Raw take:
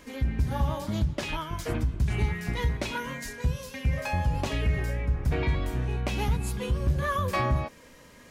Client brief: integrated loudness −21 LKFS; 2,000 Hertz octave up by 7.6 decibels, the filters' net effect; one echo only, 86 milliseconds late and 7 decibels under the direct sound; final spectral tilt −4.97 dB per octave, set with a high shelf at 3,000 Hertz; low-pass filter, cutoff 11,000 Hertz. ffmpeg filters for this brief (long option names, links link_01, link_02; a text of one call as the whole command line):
ffmpeg -i in.wav -af "lowpass=11000,equalizer=frequency=2000:width_type=o:gain=7,highshelf=frequency=3000:gain=6,aecho=1:1:86:0.447,volume=5.5dB" out.wav